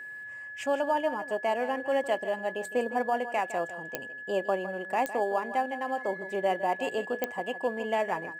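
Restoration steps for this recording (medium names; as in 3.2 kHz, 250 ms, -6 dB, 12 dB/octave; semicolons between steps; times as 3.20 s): de-click; band-stop 1.7 kHz, Q 30; inverse comb 159 ms -13 dB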